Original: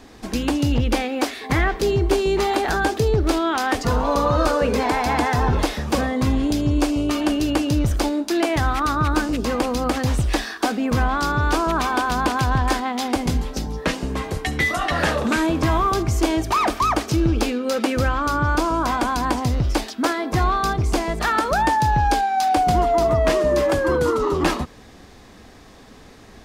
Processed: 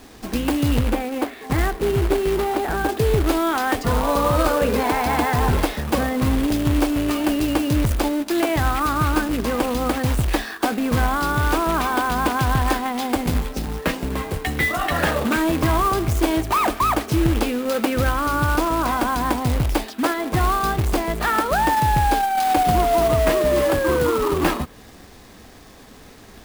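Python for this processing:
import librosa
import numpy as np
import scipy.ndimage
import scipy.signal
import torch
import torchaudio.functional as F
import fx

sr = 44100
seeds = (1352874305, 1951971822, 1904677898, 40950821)

y = fx.spacing_loss(x, sr, db_at_10k=28, at=(0.79, 2.89))
y = fx.quant_companded(y, sr, bits=4)
y = fx.dynamic_eq(y, sr, hz=5800.0, q=1.1, threshold_db=-45.0, ratio=4.0, max_db=-6)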